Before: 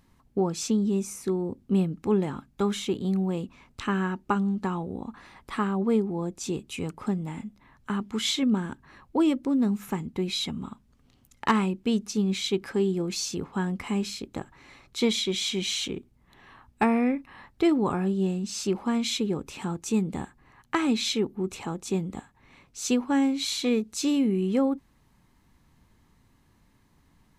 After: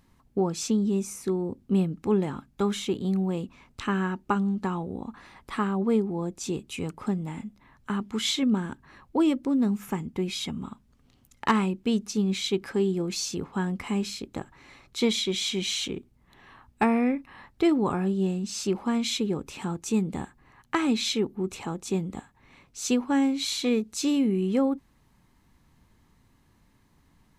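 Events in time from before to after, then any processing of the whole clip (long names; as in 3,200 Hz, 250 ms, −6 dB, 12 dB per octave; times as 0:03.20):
0:09.75–0:10.65: notch filter 4,000 Hz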